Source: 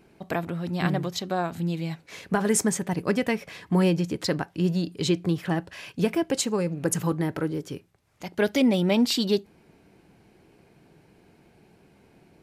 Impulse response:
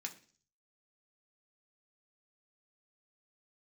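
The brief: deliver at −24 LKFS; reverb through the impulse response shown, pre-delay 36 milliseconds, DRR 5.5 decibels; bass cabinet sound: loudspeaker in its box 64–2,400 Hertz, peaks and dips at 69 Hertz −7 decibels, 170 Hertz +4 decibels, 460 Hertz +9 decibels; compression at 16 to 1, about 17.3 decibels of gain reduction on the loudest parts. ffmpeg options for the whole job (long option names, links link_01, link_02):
-filter_complex "[0:a]acompressor=threshold=-35dB:ratio=16,asplit=2[link_01][link_02];[1:a]atrim=start_sample=2205,adelay=36[link_03];[link_02][link_03]afir=irnorm=-1:irlink=0,volume=-3.5dB[link_04];[link_01][link_04]amix=inputs=2:normalize=0,highpass=frequency=64:width=0.5412,highpass=frequency=64:width=1.3066,equalizer=frequency=69:width_type=q:width=4:gain=-7,equalizer=frequency=170:width_type=q:width=4:gain=4,equalizer=frequency=460:width_type=q:width=4:gain=9,lowpass=frequency=2400:width=0.5412,lowpass=frequency=2400:width=1.3066,volume=13dB"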